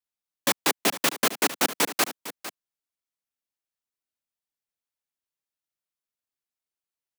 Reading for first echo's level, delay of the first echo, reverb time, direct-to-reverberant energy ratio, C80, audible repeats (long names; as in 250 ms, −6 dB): −14.0 dB, 454 ms, no reverb audible, no reverb audible, no reverb audible, 1